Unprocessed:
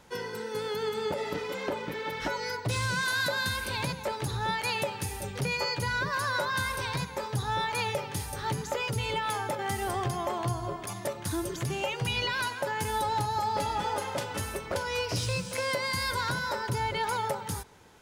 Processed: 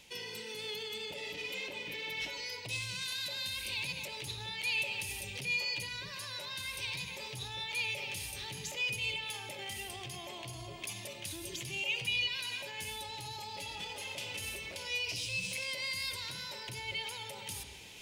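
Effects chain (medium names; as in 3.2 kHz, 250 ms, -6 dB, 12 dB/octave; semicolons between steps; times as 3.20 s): peak limiter -30 dBFS, peak gain reduction 11 dB; resonant high shelf 1.9 kHz +10 dB, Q 3; reverberation RT60 0.75 s, pre-delay 53 ms, DRR 9 dB; reverse; upward compressor, threshold -34 dBFS; reverse; trim -8.5 dB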